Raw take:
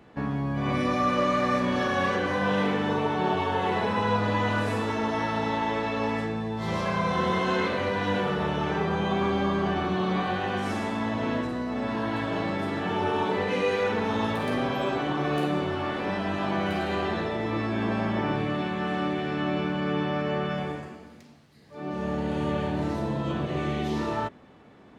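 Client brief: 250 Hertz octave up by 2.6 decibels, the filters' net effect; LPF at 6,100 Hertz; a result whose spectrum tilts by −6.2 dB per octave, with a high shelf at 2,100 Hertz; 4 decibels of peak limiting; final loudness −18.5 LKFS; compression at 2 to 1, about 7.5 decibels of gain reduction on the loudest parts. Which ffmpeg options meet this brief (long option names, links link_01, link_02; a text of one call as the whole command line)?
ffmpeg -i in.wav -af "lowpass=6100,equalizer=frequency=250:width_type=o:gain=3.5,highshelf=frequency=2100:gain=-7,acompressor=threshold=-35dB:ratio=2,volume=16dB,alimiter=limit=-9dB:level=0:latency=1" out.wav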